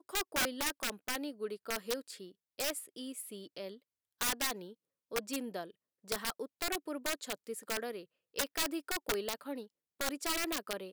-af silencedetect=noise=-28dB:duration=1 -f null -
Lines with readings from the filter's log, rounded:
silence_start: 2.70
silence_end: 4.21 | silence_duration: 1.51